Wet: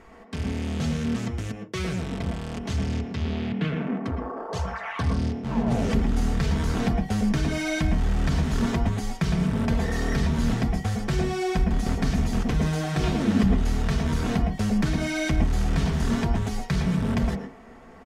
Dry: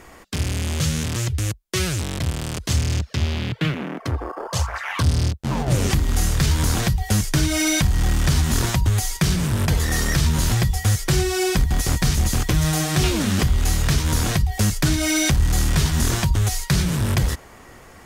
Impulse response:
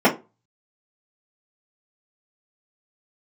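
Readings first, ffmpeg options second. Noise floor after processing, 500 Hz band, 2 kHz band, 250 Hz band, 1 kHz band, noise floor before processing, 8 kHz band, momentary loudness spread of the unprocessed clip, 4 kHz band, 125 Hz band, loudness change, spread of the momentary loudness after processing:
-45 dBFS, -2.0 dB, -6.5 dB, 0.0 dB, -3.0 dB, -45 dBFS, -16.0 dB, 6 LU, -11.0 dB, -6.0 dB, -5.0 dB, 7 LU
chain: -filter_complex "[0:a]aemphasis=mode=reproduction:type=75fm,aecho=1:1:4.5:0.4,asplit=2[a][b];[1:a]atrim=start_sample=2205,adelay=106[c];[b][c]afir=irnorm=-1:irlink=0,volume=-25dB[d];[a][d]amix=inputs=2:normalize=0,volume=-6dB"

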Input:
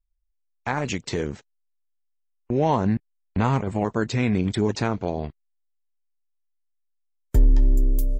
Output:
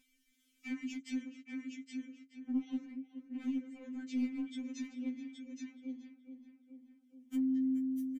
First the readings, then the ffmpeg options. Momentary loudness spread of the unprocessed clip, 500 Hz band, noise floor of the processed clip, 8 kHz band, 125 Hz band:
11 LU, -33.0 dB, -75 dBFS, -16.5 dB, under -40 dB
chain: -filter_complex "[0:a]asplit=3[a][b][c];[a]bandpass=f=270:t=q:w=8,volume=0dB[d];[b]bandpass=f=2.29k:t=q:w=8,volume=-6dB[e];[c]bandpass=f=3.01k:t=q:w=8,volume=-9dB[f];[d][e][f]amix=inputs=3:normalize=0,equalizer=f=360:t=o:w=0.65:g=-5.5,asplit=2[g][h];[h]aecho=0:1:820:0.266[i];[g][i]amix=inputs=2:normalize=0,acompressor=threshold=-54dB:ratio=2.5,asplit=2[j][k];[k]adelay=425,lowpass=f=2.2k:p=1,volume=-10.5dB,asplit=2[l][m];[m]adelay=425,lowpass=f=2.2k:p=1,volume=0.39,asplit=2[n][o];[o]adelay=425,lowpass=f=2.2k:p=1,volume=0.39,asplit=2[p][q];[q]adelay=425,lowpass=f=2.2k:p=1,volume=0.39[r];[l][n][p][r]amix=inputs=4:normalize=0[s];[j][s]amix=inputs=2:normalize=0,aexciter=amount=2.2:drive=9.2:freq=5.6k,acompressor=mode=upward:threshold=-57dB:ratio=2.5,aeval=exprs='clip(val(0),-1,0.00631)':c=same,afftfilt=real='re*3.46*eq(mod(b,12),0)':imag='im*3.46*eq(mod(b,12),0)':win_size=2048:overlap=0.75,volume=9dB"

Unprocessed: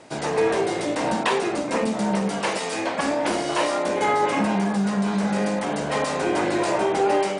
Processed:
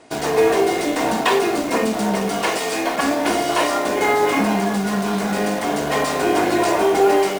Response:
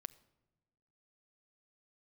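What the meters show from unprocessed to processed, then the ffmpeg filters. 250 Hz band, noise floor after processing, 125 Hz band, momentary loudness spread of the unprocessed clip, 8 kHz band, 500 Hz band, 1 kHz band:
+3.0 dB, -24 dBFS, +0.5 dB, 4 LU, +5.5 dB, +4.5 dB, +4.0 dB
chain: -filter_complex "[0:a]aecho=1:1:2.8:0.38,asplit=2[a][b];[b]acrusher=bits=4:mix=0:aa=0.000001,volume=-3dB[c];[a][c]amix=inputs=2:normalize=0[d];[1:a]atrim=start_sample=2205,asetrate=66150,aresample=44100[e];[d][e]afir=irnorm=-1:irlink=0,volume=7.5dB"

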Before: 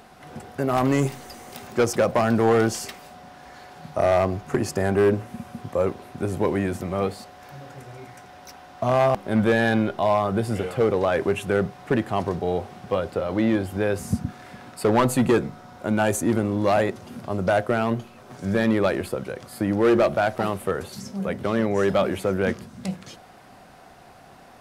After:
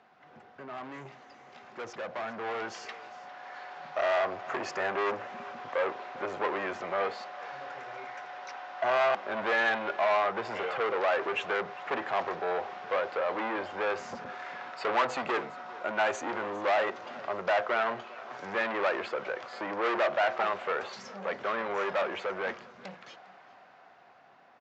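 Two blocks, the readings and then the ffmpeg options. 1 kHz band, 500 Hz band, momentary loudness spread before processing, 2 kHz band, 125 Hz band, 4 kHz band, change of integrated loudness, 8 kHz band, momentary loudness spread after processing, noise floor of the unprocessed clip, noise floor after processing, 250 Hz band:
-3.5 dB, -8.5 dB, 17 LU, -1.5 dB, -26.5 dB, -4.0 dB, -8.0 dB, -16.0 dB, 15 LU, -48 dBFS, -56 dBFS, -19.0 dB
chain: -filter_complex "[0:a]aresample=16000,asoftclip=type=tanh:threshold=-25dB,aresample=44100,highpass=120,lowpass=2.2k,aecho=1:1:403:0.1,acrossover=split=410[a][b];[b]dynaudnorm=f=700:g=9:m=15.5dB[c];[a][c]amix=inputs=2:normalize=0,lowshelf=f=490:g=-11.5,crystalizer=i=1:c=0,volume=-8dB"

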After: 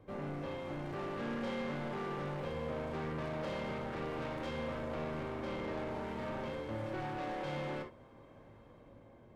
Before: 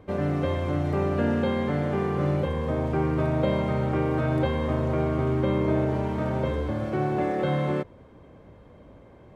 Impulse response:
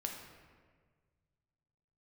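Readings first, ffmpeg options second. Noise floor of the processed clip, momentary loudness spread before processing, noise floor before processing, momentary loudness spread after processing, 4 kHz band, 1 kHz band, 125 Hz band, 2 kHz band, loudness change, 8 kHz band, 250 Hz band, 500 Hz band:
-58 dBFS, 3 LU, -50 dBFS, 19 LU, -7.0 dB, -10.5 dB, -18.0 dB, -8.5 dB, -14.0 dB, n/a, -14.5 dB, -13.0 dB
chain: -filter_complex "[0:a]acrossover=split=590[a][b];[b]dynaudnorm=f=190:g=9:m=5dB[c];[a][c]amix=inputs=2:normalize=0,asoftclip=type=tanh:threshold=-28dB[d];[1:a]atrim=start_sample=2205,atrim=end_sample=4410,asetrate=57330,aresample=44100[e];[d][e]afir=irnorm=-1:irlink=0,volume=-5dB"

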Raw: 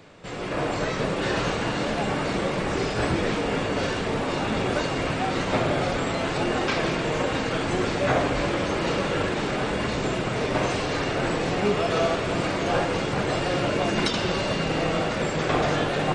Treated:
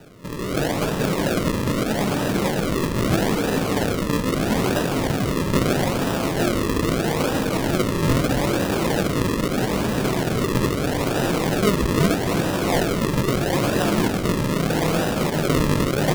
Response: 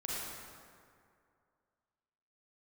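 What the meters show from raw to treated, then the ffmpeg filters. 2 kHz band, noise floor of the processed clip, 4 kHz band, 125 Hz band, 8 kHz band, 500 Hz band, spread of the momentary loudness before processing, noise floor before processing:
0.0 dB, -25 dBFS, +1.5 dB, +6.5 dB, +7.5 dB, +2.5 dB, 3 LU, -28 dBFS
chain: -filter_complex "[0:a]equalizer=f=210:w=0.58:g=6,acrusher=samples=40:mix=1:aa=0.000001:lfo=1:lforange=40:lforate=0.78,asplit=2[a][b];[1:a]atrim=start_sample=2205,asetrate=26901,aresample=44100[c];[b][c]afir=irnorm=-1:irlink=0,volume=-22dB[d];[a][d]amix=inputs=2:normalize=0"

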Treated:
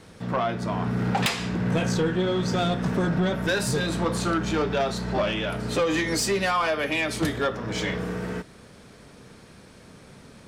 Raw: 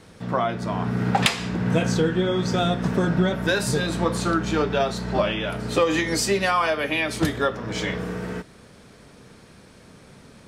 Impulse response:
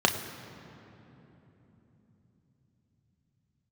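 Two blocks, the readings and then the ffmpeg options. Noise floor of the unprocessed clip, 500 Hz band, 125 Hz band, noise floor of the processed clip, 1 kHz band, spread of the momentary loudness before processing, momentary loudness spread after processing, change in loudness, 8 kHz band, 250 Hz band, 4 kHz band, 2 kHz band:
-49 dBFS, -2.5 dB, -2.0 dB, -49 dBFS, -2.5 dB, 6 LU, 5 LU, -2.0 dB, -1.5 dB, -2.0 dB, -2.5 dB, -2.0 dB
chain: -af "asoftclip=type=tanh:threshold=-17.5dB"

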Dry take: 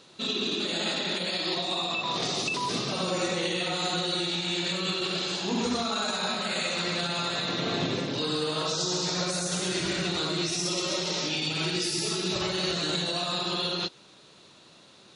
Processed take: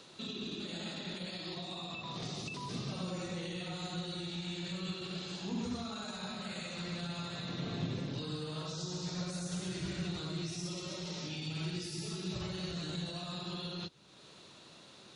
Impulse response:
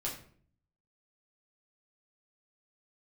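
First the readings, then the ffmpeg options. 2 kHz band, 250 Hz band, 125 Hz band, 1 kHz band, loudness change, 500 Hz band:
-14.0 dB, -7.5 dB, -3.5 dB, -14.0 dB, -12.0 dB, -13.0 dB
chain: -filter_complex "[0:a]acrossover=split=180[a][b];[b]acompressor=threshold=-54dB:ratio=2[c];[a][c]amix=inputs=2:normalize=0"

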